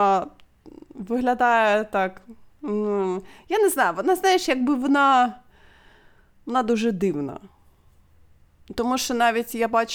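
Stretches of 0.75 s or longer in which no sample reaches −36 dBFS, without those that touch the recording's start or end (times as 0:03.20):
0:05.35–0:06.47
0:07.45–0:08.68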